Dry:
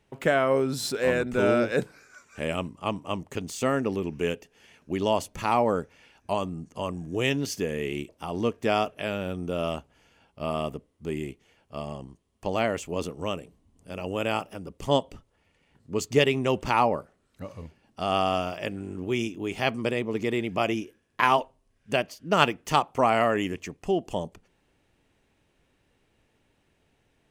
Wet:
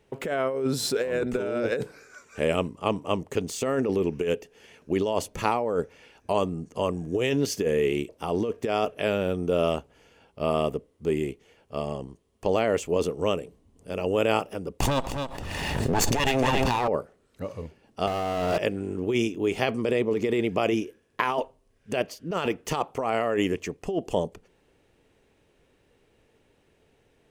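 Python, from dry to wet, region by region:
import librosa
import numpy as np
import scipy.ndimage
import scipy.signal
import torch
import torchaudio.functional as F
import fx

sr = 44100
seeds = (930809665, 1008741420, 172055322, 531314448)

y = fx.chain(x, sr, fx.lower_of_two(delay_ms=1.1),
    fx.echo_single(ms=266, db=-9.5),
    fx.pre_swell(db_per_s=22.0), at=(14.8, 16.88))
y = fx.chain(y, sr, fx.high_shelf(hz=4800.0, db=-11.5),
    fx.power_curve(exponent=0.5), at=(18.07, 18.58))
y = fx.peak_eq(y, sr, hz=450.0, db=7.5, octaves=0.64)
y = fx.over_compress(y, sr, threshold_db=-24.0, ratio=-1.0)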